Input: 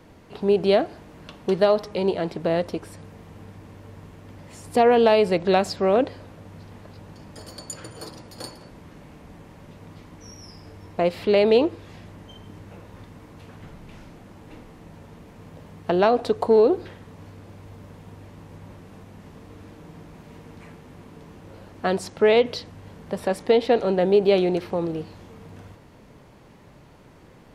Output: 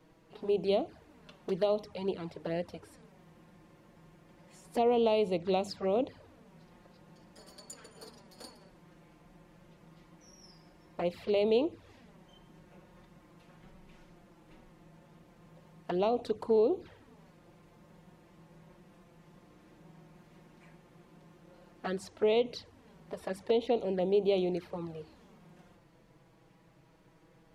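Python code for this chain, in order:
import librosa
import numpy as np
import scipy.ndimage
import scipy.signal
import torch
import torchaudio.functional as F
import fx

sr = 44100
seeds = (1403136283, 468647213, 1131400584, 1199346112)

y = fx.hum_notches(x, sr, base_hz=50, count=4)
y = fx.env_flanger(y, sr, rest_ms=6.8, full_db=-17.0)
y = F.gain(torch.from_numpy(y), -9.0).numpy()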